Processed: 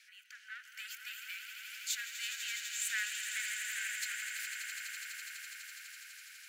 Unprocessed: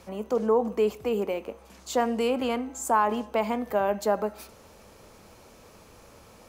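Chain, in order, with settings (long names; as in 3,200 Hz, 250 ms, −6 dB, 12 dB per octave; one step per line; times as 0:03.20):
one-sided soft clipper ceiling −25 dBFS
Butterworth high-pass 1,500 Hz 96 dB per octave
high-shelf EQ 5,400 Hz −10.5 dB, from 0:00.63 +3 dB, from 0:01.95 −2.5 dB
echo that builds up and dies away 83 ms, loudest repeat 8, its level −9.5 dB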